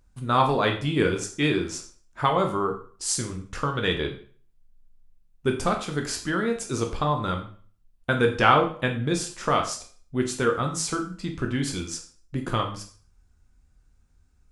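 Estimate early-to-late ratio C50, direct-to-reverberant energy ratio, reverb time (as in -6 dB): 9.0 dB, 2.5 dB, 0.45 s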